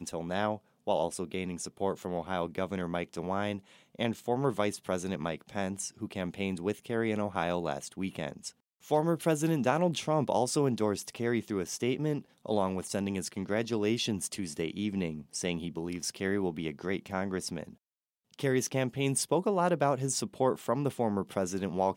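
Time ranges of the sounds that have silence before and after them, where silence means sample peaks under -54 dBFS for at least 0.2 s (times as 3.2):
0.87–8.52
8.81–17.75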